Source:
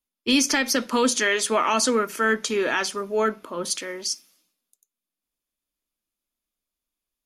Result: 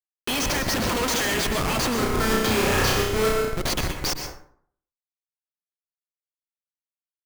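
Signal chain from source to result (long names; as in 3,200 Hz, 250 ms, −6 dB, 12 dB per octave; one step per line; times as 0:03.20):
0:00.70–0:01.34: spike at every zero crossing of −24.5 dBFS
meter weighting curve D
brickwall limiter −10 dBFS, peak gain reduction 8.5 dB
comparator with hysteresis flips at −21.5 dBFS
0:01.97–0:03.51: flutter between parallel walls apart 5.5 metres, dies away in 0.77 s
dense smooth reverb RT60 0.59 s, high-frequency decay 0.55×, pre-delay 105 ms, DRR 4.5 dB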